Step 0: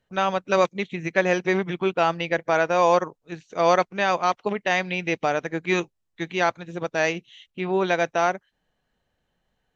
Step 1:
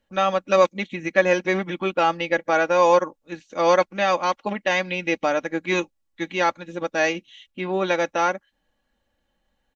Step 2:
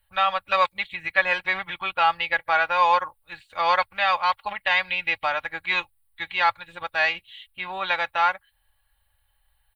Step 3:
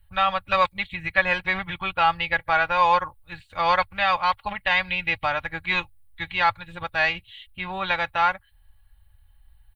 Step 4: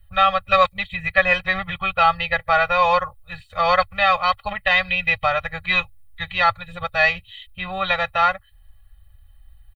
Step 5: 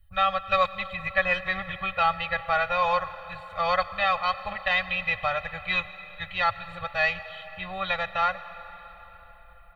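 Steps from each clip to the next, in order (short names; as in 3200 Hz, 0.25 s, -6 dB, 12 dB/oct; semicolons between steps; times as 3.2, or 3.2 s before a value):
comb 3.6 ms, depth 65%
EQ curve 100 Hz 0 dB, 220 Hz -30 dB, 410 Hz -26 dB, 860 Hz -5 dB, 4400 Hz -3 dB, 6200 Hz -28 dB, 9000 Hz +10 dB; gain +6.5 dB
tone controls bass +15 dB, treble -1 dB
comb 1.6 ms, depth 94%; gain +1 dB
digital reverb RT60 4.5 s, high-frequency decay 0.75×, pre-delay 65 ms, DRR 13.5 dB; gain -7 dB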